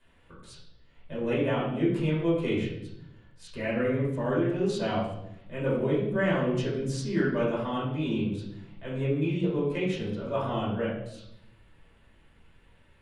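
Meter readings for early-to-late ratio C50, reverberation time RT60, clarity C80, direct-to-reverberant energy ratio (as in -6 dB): 2.0 dB, 0.75 s, 6.0 dB, -8.0 dB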